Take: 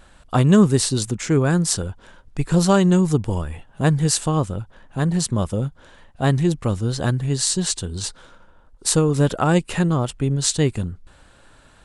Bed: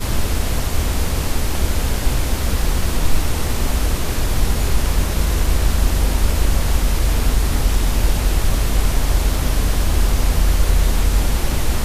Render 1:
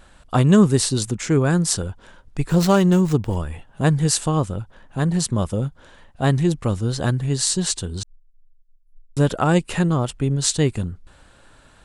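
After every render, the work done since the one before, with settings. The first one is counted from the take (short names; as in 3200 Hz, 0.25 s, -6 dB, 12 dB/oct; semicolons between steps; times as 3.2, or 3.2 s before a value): 2.49–3.36 running maximum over 3 samples; 8.03–9.17 inverse Chebyshev band-stop 100–9200 Hz, stop band 80 dB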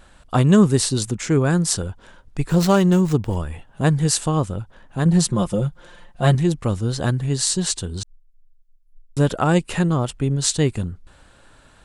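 5.05–6.35 comb 5.7 ms, depth 82%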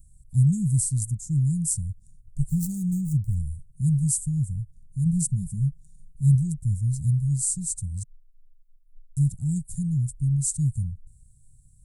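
elliptic band-stop 140–8400 Hz, stop band 50 dB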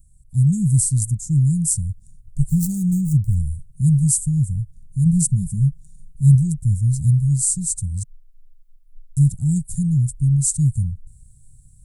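AGC gain up to 7 dB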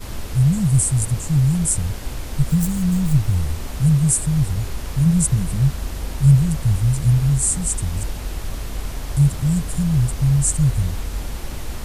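add bed -10.5 dB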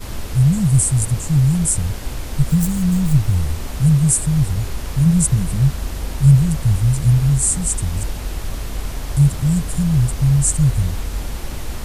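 gain +2 dB; limiter -2 dBFS, peak gain reduction 1 dB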